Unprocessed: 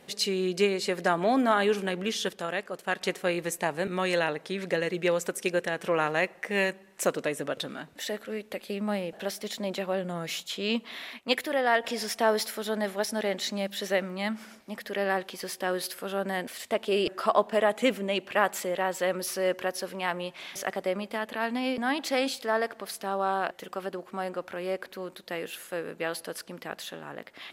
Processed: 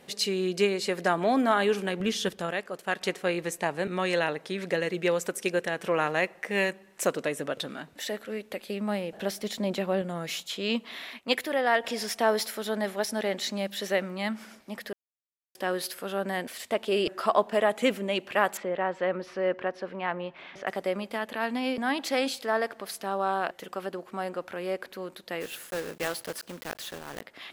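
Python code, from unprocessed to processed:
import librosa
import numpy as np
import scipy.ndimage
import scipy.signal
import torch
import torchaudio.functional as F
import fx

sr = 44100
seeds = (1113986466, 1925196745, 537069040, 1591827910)

y = fx.low_shelf(x, sr, hz=170.0, db=11.0, at=(2.0, 2.51))
y = fx.high_shelf(y, sr, hz=11000.0, db=-7.5, at=(3.1, 4.22))
y = fx.low_shelf(y, sr, hz=310.0, db=7.0, at=(9.14, 10.02))
y = fx.lowpass(y, sr, hz=2200.0, slope=12, at=(18.57, 20.67))
y = fx.block_float(y, sr, bits=3, at=(25.4, 27.2), fade=0.02)
y = fx.edit(y, sr, fx.silence(start_s=14.93, length_s=0.62), tone=tone)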